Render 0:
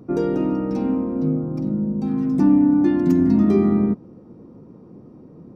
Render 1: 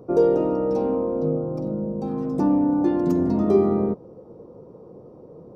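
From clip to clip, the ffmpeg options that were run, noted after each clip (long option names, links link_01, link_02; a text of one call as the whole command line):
ffmpeg -i in.wav -af "equalizer=frequency=250:width_type=o:width=1:gain=-8,equalizer=frequency=500:width_type=o:width=1:gain=12,equalizer=frequency=1000:width_type=o:width=1:gain=4,equalizer=frequency=2000:width_type=o:width=1:gain=-8,volume=-2dB" out.wav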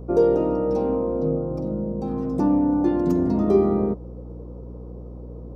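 ffmpeg -i in.wav -af "aeval=exprs='val(0)+0.0158*(sin(2*PI*60*n/s)+sin(2*PI*2*60*n/s)/2+sin(2*PI*3*60*n/s)/3+sin(2*PI*4*60*n/s)/4+sin(2*PI*5*60*n/s)/5)':channel_layout=same" out.wav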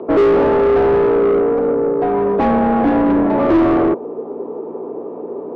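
ffmpeg -i in.wav -filter_complex "[0:a]highpass=frequency=350:width_type=q:width=0.5412,highpass=frequency=350:width_type=q:width=1.307,lowpass=frequency=3400:width_type=q:width=0.5176,lowpass=frequency=3400:width_type=q:width=0.7071,lowpass=frequency=3400:width_type=q:width=1.932,afreqshift=-62,asplit=2[link_01][link_02];[link_02]highpass=frequency=720:poles=1,volume=29dB,asoftclip=type=tanh:threshold=-8dB[link_03];[link_01][link_03]amix=inputs=2:normalize=0,lowpass=frequency=1000:poles=1,volume=-6dB,volume=3dB" out.wav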